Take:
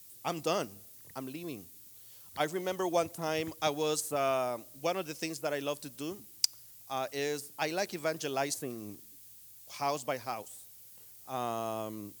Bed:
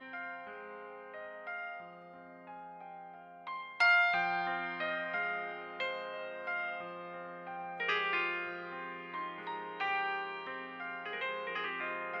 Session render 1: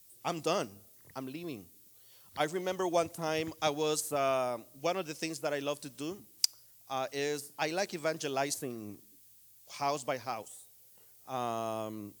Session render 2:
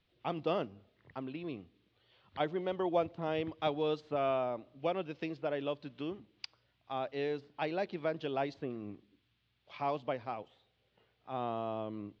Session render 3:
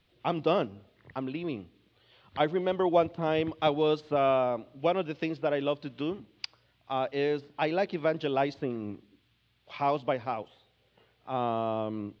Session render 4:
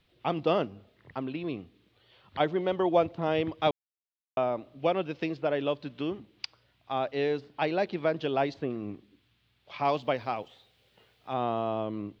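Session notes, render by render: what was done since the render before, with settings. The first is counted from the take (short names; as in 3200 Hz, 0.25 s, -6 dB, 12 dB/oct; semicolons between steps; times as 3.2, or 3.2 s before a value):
noise print and reduce 6 dB
steep low-pass 3600 Hz 36 dB/oct; dynamic EQ 1900 Hz, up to -6 dB, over -47 dBFS, Q 0.71
gain +7 dB
3.71–4.37 mute; 9.85–11.34 high shelf 3000 Hz +8.5 dB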